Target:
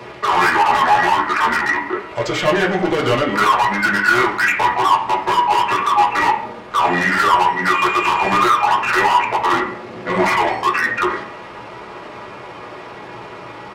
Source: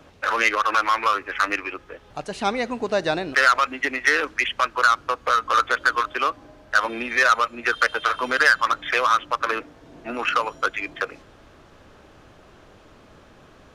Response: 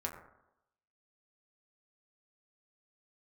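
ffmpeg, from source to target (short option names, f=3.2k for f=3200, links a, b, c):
-filter_complex "[0:a]asplit=2[a][b];[b]highpass=f=720:p=1,volume=31dB,asoftclip=type=tanh:threshold=-4dB[c];[a][c]amix=inputs=2:normalize=0,lowpass=f=7.6k:p=1,volume=-6dB,asetrate=34006,aresample=44100,atempo=1.29684[d];[1:a]atrim=start_sample=2205,asetrate=66150,aresample=44100[e];[d][e]afir=irnorm=-1:irlink=0,volume=-2dB"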